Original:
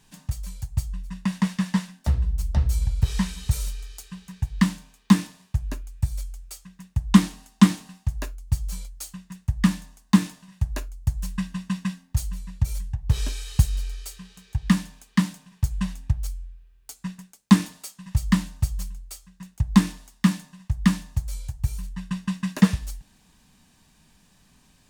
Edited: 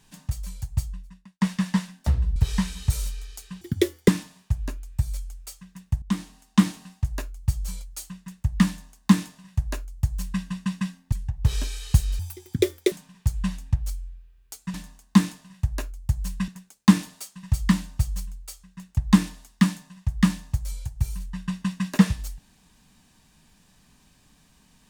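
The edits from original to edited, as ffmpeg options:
ffmpeg -i in.wav -filter_complex "[0:a]asplit=11[link_01][link_02][link_03][link_04][link_05][link_06][link_07][link_08][link_09][link_10][link_11];[link_01]atrim=end=1.41,asetpts=PTS-STARTPTS,afade=type=out:start_time=0.83:duration=0.58:curve=qua[link_12];[link_02]atrim=start=1.41:end=2.362,asetpts=PTS-STARTPTS,afade=type=in:duration=0.004:curve=hsin[link_13];[link_03]atrim=start=2.968:end=4.224[link_14];[link_04]atrim=start=4.22:end=5.12,asetpts=PTS-STARTPTS,asetrate=84231,aresample=44100,atrim=end_sample=20780,asetpts=PTS-STARTPTS[link_15];[link_05]atrim=start=5.116:end=7.06,asetpts=PTS-STARTPTS,afade=type=out:start_time=1.94:duration=0.004:curve=hsin:silence=0.177828[link_16];[link_06]atrim=start=7.06:end=12.162,asetpts=PTS-STARTPTS,afade=type=in:duration=0.88:silence=0.177828[link_17];[link_07]atrim=start=12.768:end=13.844[link_18];[link_08]atrim=start=13.84:end=15.29,asetpts=PTS-STARTPTS,asetrate=87759,aresample=44100,atrim=end_sample=32133,asetpts=PTS-STARTPTS[link_19];[link_09]atrim=start=15.286:end=17.112[link_20];[link_10]atrim=start=9.718:end=11.462[link_21];[link_11]atrim=start=17.108[link_22];[link_12][link_13]concat=n=2:v=0:a=1[link_23];[link_23][link_14]acrossfade=duration=0.004:curve1=hsin:curve2=hsin[link_24];[link_24][link_15]acrossfade=duration=0.004:curve1=hsin:curve2=hsin[link_25];[link_16][link_17]concat=n=2:v=0:a=1[link_26];[link_25][link_26]acrossfade=duration=0.004:curve1=hsin:curve2=hsin[link_27];[link_27][link_18]acrossfade=duration=0.004:curve1=hsin:curve2=hsin[link_28];[link_28][link_19]acrossfade=duration=0.004:curve1=hsin:curve2=hsin[link_29];[link_29][link_20]acrossfade=duration=0.004:curve1=hsin:curve2=hsin[link_30];[link_30][link_21]acrossfade=duration=0.004:curve1=hsin:curve2=hsin[link_31];[link_31][link_22]acrossfade=duration=0.004:curve1=hsin:curve2=hsin" out.wav

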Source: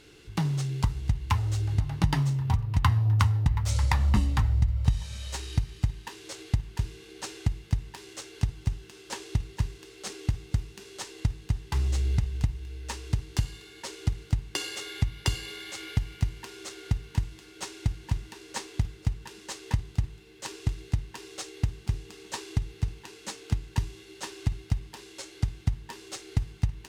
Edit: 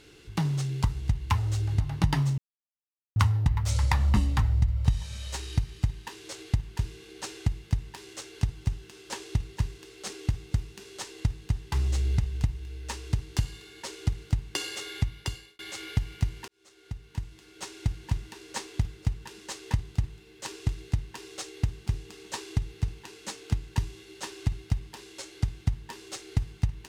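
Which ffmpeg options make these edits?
ffmpeg -i in.wav -filter_complex "[0:a]asplit=5[link_01][link_02][link_03][link_04][link_05];[link_01]atrim=end=2.38,asetpts=PTS-STARTPTS,afade=type=out:start_time=2.376:duration=0.004:curve=hsin[link_06];[link_02]atrim=start=2.38:end=3.16,asetpts=PTS-STARTPTS,volume=0[link_07];[link_03]atrim=start=3.16:end=15.59,asetpts=PTS-STARTPTS,afade=type=in:duration=0.004:curve=hsin,afade=type=out:start_time=11.81:duration=0.62[link_08];[link_04]atrim=start=15.59:end=16.48,asetpts=PTS-STARTPTS,afade=type=in:duration=0.004:curve=hsin,afade=type=out:start_time=0.886:duration=0.004:curve=hsin[link_09];[link_05]atrim=start=16.48,asetpts=PTS-STARTPTS,afade=type=in:duration=1.47[link_10];[link_06][link_07][link_08][link_09][link_10]concat=n=5:v=0:a=1" out.wav

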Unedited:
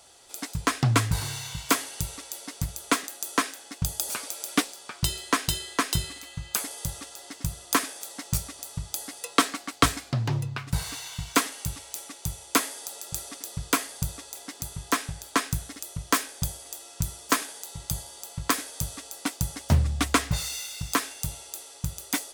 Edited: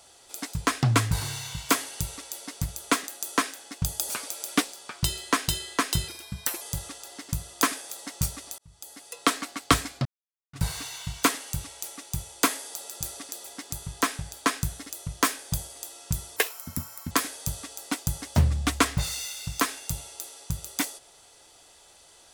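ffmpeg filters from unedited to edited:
ffmpeg -i in.wav -filter_complex "[0:a]asplit=9[link_01][link_02][link_03][link_04][link_05][link_06][link_07][link_08][link_09];[link_01]atrim=end=6.084[link_10];[link_02]atrim=start=6.08:end=6.73,asetpts=PTS-STARTPTS,asetrate=53802,aresample=44100[link_11];[link_03]atrim=start=6.726:end=8.7,asetpts=PTS-STARTPTS,afade=type=out:start_time=1.97:duration=0.004:curve=hsin[link_12];[link_04]atrim=start=8.7:end=10.17,asetpts=PTS-STARTPTS,afade=type=in:duration=0.88,afade=type=out:start_time=1.466:duration=0.004:curve=hsin[link_13];[link_05]atrim=start=10.17:end=10.65,asetpts=PTS-STARTPTS,volume=0[link_14];[link_06]atrim=start=10.65:end=13.562,asetpts=PTS-STARTPTS,afade=type=in:duration=0.004:curve=hsin[link_15];[link_07]atrim=start=14.338:end=17.264[link_16];[link_08]atrim=start=17.26:end=18.45,asetpts=PTS-STARTPTS,asetrate=70119,aresample=44100[link_17];[link_09]atrim=start=18.446[link_18];[link_10][link_11]acrossfade=duration=0.004:curve1=hsin:curve2=hsin[link_19];[link_12][link_13][link_14][link_15]concat=n=4:v=0:a=1[link_20];[link_19][link_20]acrossfade=duration=0.004:curve1=hsin:curve2=hsin[link_21];[link_21][link_16]acrossfade=duration=0.004:curve1=hsin:curve2=hsin[link_22];[link_22][link_17]acrossfade=duration=0.004:curve1=hsin:curve2=hsin[link_23];[link_23][link_18]acrossfade=duration=0.004:curve1=hsin:curve2=hsin" out.wav

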